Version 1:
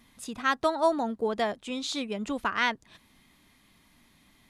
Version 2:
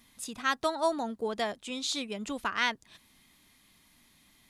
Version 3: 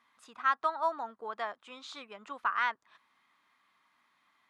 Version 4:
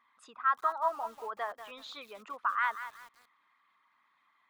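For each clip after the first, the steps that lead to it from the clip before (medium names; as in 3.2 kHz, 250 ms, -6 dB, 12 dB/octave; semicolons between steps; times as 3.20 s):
treble shelf 2.9 kHz +8.5 dB; trim -4.5 dB
band-pass filter 1.2 kHz, Q 2.6; trim +4.5 dB
resonances exaggerated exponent 1.5; bit-crushed delay 188 ms, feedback 35%, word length 8-bit, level -11 dB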